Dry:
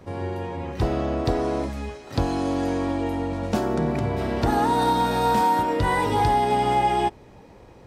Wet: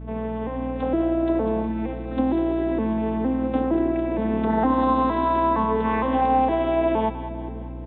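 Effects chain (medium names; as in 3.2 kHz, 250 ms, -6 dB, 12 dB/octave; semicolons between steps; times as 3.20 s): vocoder on a broken chord minor triad, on A3, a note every 463 ms; bass shelf 140 Hz -7 dB; in parallel at -2 dB: compression, threshold -31 dBFS, peak gain reduction 12.5 dB; on the sum: hum 60 Hz, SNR 12 dB; on a send: two-band feedback delay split 500 Hz, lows 531 ms, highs 198 ms, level -11 dB; on the sum: resampled via 8 kHz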